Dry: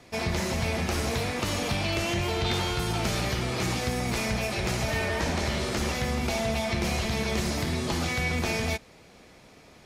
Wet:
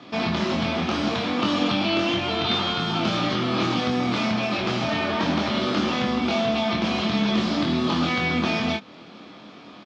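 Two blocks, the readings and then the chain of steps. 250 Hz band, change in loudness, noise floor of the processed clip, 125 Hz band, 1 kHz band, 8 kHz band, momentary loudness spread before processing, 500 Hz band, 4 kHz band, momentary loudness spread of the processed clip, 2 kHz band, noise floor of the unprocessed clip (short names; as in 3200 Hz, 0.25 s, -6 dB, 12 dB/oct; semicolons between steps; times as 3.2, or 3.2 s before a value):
+8.5 dB, +4.5 dB, -45 dBFS, -1.0 dB, +6.5 dB, -8.5 dB, 2 LU, +4.0 dB, +6.0 dB, 2 LU, +3.0 dB, -53 dBFS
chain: in parallel at 0 dB: compressor, threshold -36 dBFS, peak gain reduction 12.5 dB; on the sum: speaker cabinet 170–4700 Hz, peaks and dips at 200 Hz +8 dB, 290 Hz +8 dB, 460 Hz -4 dB, 1200 Hz +7 dB, 2000 Hz -5 dB, 3300 Hz +6 dB; doubler 24 ms -4 dB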